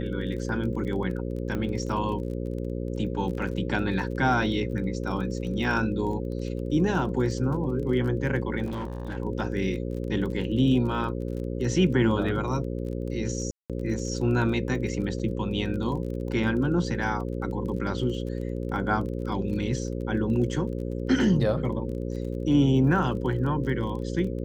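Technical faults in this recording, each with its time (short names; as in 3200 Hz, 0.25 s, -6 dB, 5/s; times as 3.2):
buzz 60 Hz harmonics 9 -31 dBFS
crackle 26/s -35 dBFS
1.55 pop -19 dBFS
8.65–9.17 clipped -28.5 dBFS
13.51–13.7 gap 0.187 s
15.19–15.2 gap 6.3 ms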